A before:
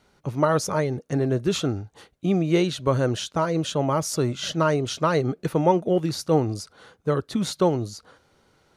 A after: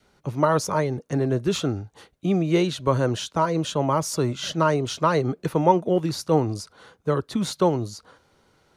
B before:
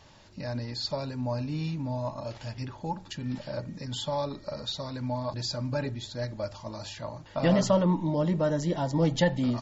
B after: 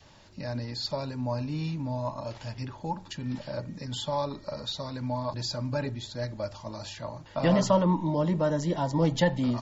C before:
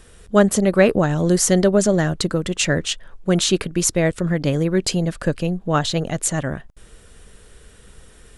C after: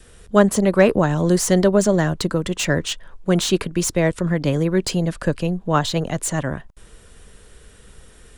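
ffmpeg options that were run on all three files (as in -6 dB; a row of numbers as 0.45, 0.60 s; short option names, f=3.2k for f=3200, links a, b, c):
-filter_complex "[0:a]adynamicequalizer=threshold=0.00631:dfrequency=990:dqfactor=6.1:tfrequency=990:tqfactor=6.1:attack=5:release=100:ratio=0.375:range=3.5:mode=boostabove:tftype=bell,acrossover=split=300|770|1600[a][b][c][d];[d]asoftclip=type=tanh:threshold=-18dB[e];[a][b][c][e]amix=inputs=4:normalize=0"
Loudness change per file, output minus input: +0.5, 0.0, -0.5 LU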